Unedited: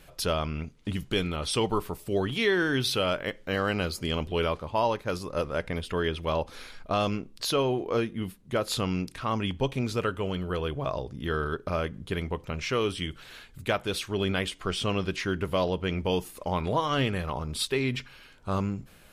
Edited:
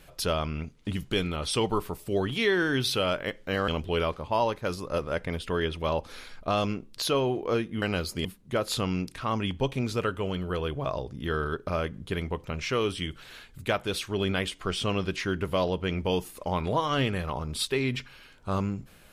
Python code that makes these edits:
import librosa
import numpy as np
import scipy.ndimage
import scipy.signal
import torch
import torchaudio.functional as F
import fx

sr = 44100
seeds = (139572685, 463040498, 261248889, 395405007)

y = fx.edit(x, sr, fx.move(start_s=3.68, length_s=0.43, to_s=8.25), tone=tone)